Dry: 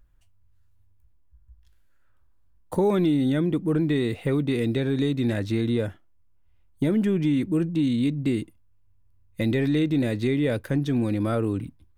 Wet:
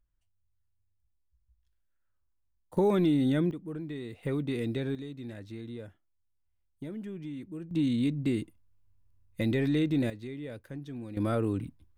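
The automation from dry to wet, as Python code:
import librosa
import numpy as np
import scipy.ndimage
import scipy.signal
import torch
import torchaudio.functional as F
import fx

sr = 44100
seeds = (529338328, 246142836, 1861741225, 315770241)

y = fx.gain(x, sr, db=fx.steps((0.0, -16.5), (2.77, -3.5), (3.51, -15.0), (4.23, -7.5), (4.95, -17.0), (7.71, -4.5), (10.1, -16.5), (11.17, -4.0)))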